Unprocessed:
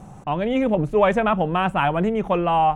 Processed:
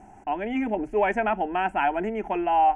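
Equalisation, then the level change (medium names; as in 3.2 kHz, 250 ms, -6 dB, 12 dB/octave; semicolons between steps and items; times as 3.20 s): distance through air 61 m; bass shelf 220 Hz -7 dB; static phaser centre 780 Hz, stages 8; 0.0 dB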